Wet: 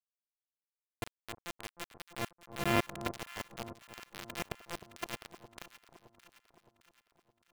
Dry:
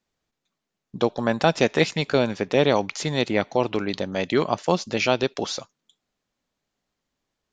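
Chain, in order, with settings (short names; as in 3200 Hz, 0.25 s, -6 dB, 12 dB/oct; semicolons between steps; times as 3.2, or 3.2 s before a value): sample sorter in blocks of 128 samples; level quantiser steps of 23 dB; auto swell 0.389 s; ladder low-pass 3300 Hz, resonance 40%; bit-crush 7-bit; echo with dull and thin repeats by turns 0.308 s, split 1100 Hz, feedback 71%, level -11.5 dB; gain +8.5 dB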